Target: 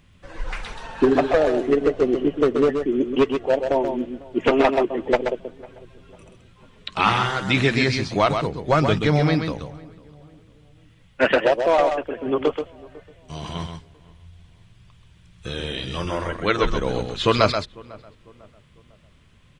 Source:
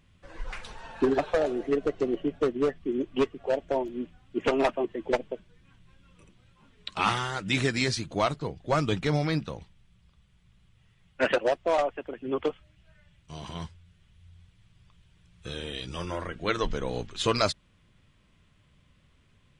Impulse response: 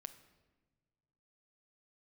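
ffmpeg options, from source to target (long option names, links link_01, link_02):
-filter_complex "[0:a]asplit=2[link_01][link_02];[link_02]aecho=0:1:130:0.473[link_03];[link_01][link_03]amix=inputs=2:normalize=0,acrossover=split=4600[link_04][link_05];[link_05]acompressor=threshold=-53dB:ratio=4:attack=1:release=60[link_06];[link_04][link_06]amix=inputs=2:normalize=0,asplit=2[link_07][link_08];[link_08]adelay=499,lowpass=frequency=1300:poles=1,volume=-22dB,asplit=2[link_09][link_10];[link_10]adelay=499,lowpass=frequency=1300:poles=1,volume=0.44,asplit=2[link_11][link_12];[link_12]adelay=499,lowpass=frequency=1300:poles=1,volume=0.44[link_13];[link_09][link_11][link_13]amix=inputs=3:normalize=0[link_14];[link_07][link_14]amix=inputs=2:normalize=0,volume=7dB"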